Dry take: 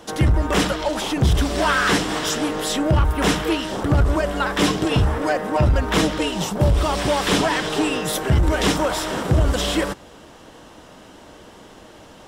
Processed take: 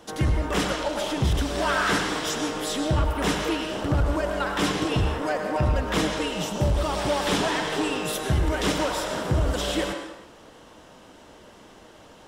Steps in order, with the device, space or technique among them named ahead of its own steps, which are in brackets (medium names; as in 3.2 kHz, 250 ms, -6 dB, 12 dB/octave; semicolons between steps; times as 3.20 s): filtered reverb send (on a send: high-pass 360 Hz 12 dB/octave + low-pass 8.8 kHz + reverberation RT60 0.95 s, pre-delay 93 ms, DRR 3.5 dB); on the sum: trim -6 dB